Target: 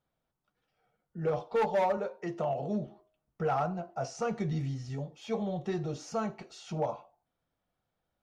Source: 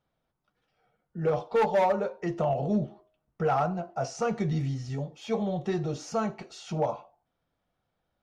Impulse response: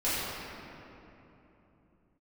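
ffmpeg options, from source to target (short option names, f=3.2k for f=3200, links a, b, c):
-filter_complex "[0:a]asettb=1/sr,asplit=3[a][b][c];[a]atrim=end=1.974[d];[b]atrim=start=1.97:end=2.87,asetpts=PTS-STARTPTS,afade=t=in:d=0.004:c=qsin,afade=t=out:st=0.896:d=0.004:c=qsin,highpass=f=180:p=1[e];[c]atrim=start=2.866[f];[d][e]acrossfade=d=0.004:c1=hsin:c2=qsin[g];[g][f]acrossfade=d=0.004:c1=qsin:c2=hsin,volume=-4dB"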